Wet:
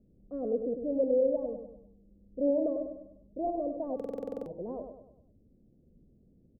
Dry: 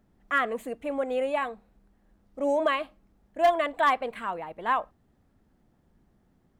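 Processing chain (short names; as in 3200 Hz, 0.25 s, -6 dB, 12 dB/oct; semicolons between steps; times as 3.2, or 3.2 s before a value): elliptic low-pass 530 Hz, stop band 80 dB; on a send: feedback echo 0.1 s, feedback 44%, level -7 dB; on the sum: stuck buffer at 3.95, samples 2048, times 10; gain +2.5 dB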